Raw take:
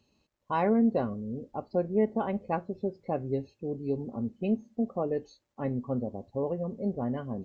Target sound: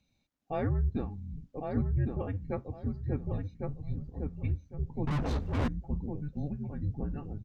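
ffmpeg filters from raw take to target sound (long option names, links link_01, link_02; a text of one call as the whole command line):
ffmpeg -i in.wav -filter_complex "[0:a]asplit=2[link_01][link_02];[link_02]adelay=1105,lowpass=frequency=1800:poles=1,volume=-3dB,asplit=2[link_03][link_04];[link_04]adelay=1105,lowpass=frequency=1800:poles=1,volume=0.25,asplit=2[link_05][link_06];[link_06]adelay=1105,lowpass=frequency=1800:poles=1,volume=0.25,asplit=2[link_07][link_08];[link_08]adelay=1105,lowpass=frequency=1800:poles=1,volume=0.25[link_09];[link_01][link_03][link_05][link_07][link_09]amix=inputs=5:normalize=0,asettb=1/sr,asplit=3[link_10][link_11][link_12];[link_10]atrim=end=5.074[link_13];[link_11]atrim=start=5.07:end=5.68,asetpts=PTS-STARTPTS,afade=type=in:duration=0.004:curve=qsin,afade=type=out:start_time=0.606:duration=0.004:curve=qsin,asplit=2[link_14][link_15];[link_15]highpass=frequency=720:poles=1,volume=36dB,asoftclip=type=tanh:threshold=-18dB[link_16];[link_14][link_16]amix=inputs=2:normalize=0,lowpass=frequency=1900:poles=1,volume=-6dB[link_17];[link_12]atrim=start=5.676[link_18];[link_13][link_17]acrossfade=duration=0.004:curve1=hsin:curve2=qsin[link_19];[link_19][link_18]acrossfade=duration=0.004:curve1=qsin:curve2=hsin,afreqshift=-300,volume=-4.5dB" out.wav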